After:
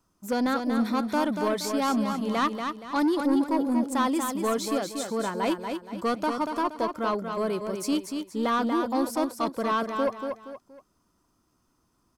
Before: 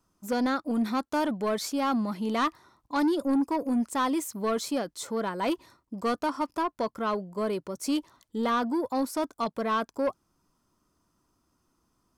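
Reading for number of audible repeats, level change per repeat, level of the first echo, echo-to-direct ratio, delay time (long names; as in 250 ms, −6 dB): 3, −9.0 dB, −6.0 dB, −5.5 dB, 236 ms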